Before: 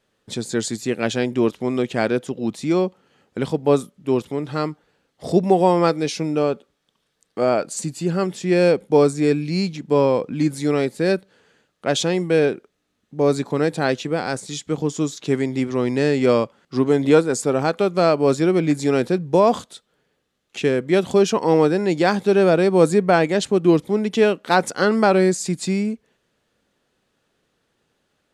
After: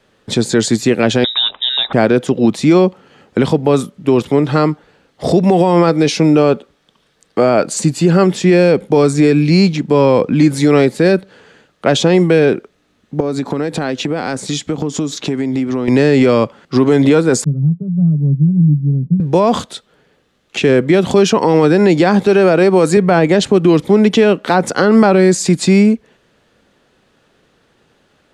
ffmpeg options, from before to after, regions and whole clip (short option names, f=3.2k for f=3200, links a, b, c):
-filter_complex "[0:a]asettb=1/sr,asplit=3[a][b][c];[a]atrim=end=1.244[d];[b]atrim=start=1.24:end=1.93,asetpts=PTS-STARTPTS,afade=t=in:d=0.004:c=qsin,afade=t=out:st=0.686:d=0.004:c=qsin,equalizer=f=760:t=o:w=1.5:g=8,lowpass=f=3.4k:t=q:w=0.5098,lowpass=f=3.4k:t=q:w=0.6013,lowpass=f=3.4k:t=q:w=0.9,lowpass=f=3.4k:t=q:w=2.563,afreqshift=-4000[e];[c]atrim=start=1.926[f];[d][e]acrossfade=d=0.004:c1=hsin:c2=qsin[g];[g][f]acrossfade=d=0.004:c1=qsin:c2=hsin,asettb=1/sr,asplit=3[h][i][j];[h]atrim=end=13.204[k];[i]atrim=start=13.2:end=15.88,asetpts=PTS-STARTPTS,afade=t=in:d=0.004:c=qsin,afade=t=out:st=2.676:d=0.004:c=qsin,equalizer=f=260:t=o:w=0.28:g=5,acompressor=threshold=-27dB:ratio=12:attack=3.2:release=140:knee=1:detection=peak[l];[j]atrim=start=15.876[m];[k][l]acrossfade=d=0.004:c1=hsin:c2=qsin[n];[n][m]acrossfade=d=0.004:c1=qsin:c2=hsin,asettb=1/sr,asplit=3[o][p][q];[o]atrim=end=17.444[r];[p]atrim=start=17.44:end=19.2,asetpts=PTS-STARTPTS,afade=t=in:d=0.004:c=qsin,afade=t=out:st=1.756:d=0.004:c=qsin,asuperpass=centerf=160:order=4:qfactor=3.3,aecho=1:1:7:0.85,atrim=end_sample=77616[s];[q]atrim=start=19.196[t];[r][s]acrossfade=d=0.004:c1=hsin:c2=qsin[u];[u][t]acrossfade=d=0.004:c1=qsin:c2=hsin,asettb=1/sr,asplit=3[v][w][x];[v]atrim=end=22.264[y];[w]atrim=start=22.26:end=22.97,asetpts=PTS-STARTPTS,afade=t=in:d=0.004:c=qsin,afade=t=out:st=0.706:d=0.004:c=qsin,highpass=f=270:p=1,bandreject=f=3.5k:w=9.9[z];[x]atrim=start=22.966[aa];[y][z]acrossfade=d=0.004:c1=hsin:c2=qsin[ab];[ab][aa]acrossfade=d=0.004:c1=qsin:c2=hsin,highshelf=f=7k:g=-9.5,acrossover=split=270|1200[ac][ad][ae];[ac]acompressor=threshold=-23dB:ratio=4[af];[ad]acompressor=threshold=-20dB:ratio=4[ag];[ae]acompressor=threshold=-30dB:ratio=4[ah];[af][ag][ah]amix=inputs=3:normalize=0,alimiter=level_in=15dB:limit=-1dB:release=50:level=0:latency=1,volume=-1dB"